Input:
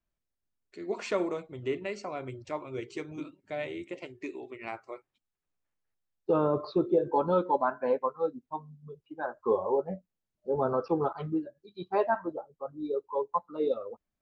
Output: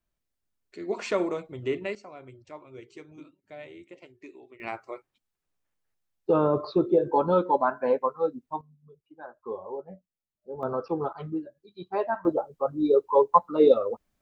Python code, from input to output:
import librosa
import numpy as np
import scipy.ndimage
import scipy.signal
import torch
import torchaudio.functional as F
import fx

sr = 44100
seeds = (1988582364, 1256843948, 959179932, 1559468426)

y = fx.gain(x, sr, db=fx.steps((0.0, 3.0), (1.95, -8.0), (4.6, 3.5), (8.61, -8.5), (10.63, -1.0), (12.25, 11.0)))